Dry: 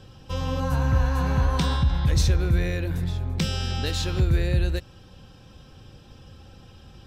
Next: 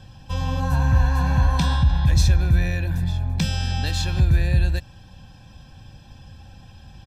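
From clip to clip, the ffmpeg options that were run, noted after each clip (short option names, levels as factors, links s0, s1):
-af "aecho=1:1:1.2:0.67"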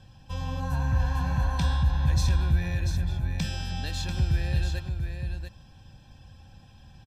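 -af "aecho=1:1:690:0.473,volume=0.422"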